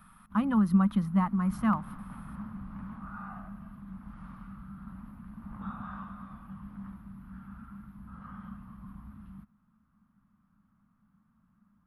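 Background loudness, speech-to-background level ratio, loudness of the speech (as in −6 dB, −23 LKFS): −45.0 LKFS, 17.5 dB, −27.5 LKFS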